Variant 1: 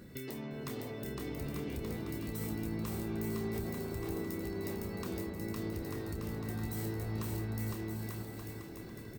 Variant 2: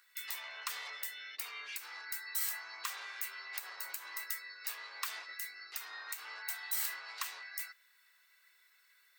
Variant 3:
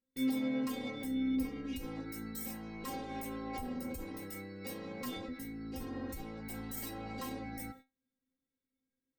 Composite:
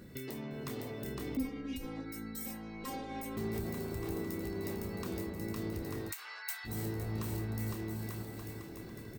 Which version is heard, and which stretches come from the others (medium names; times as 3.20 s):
1
1.37–3.37 s: from 3
6.10–6.67 s: from 2, crossfade 0.06 s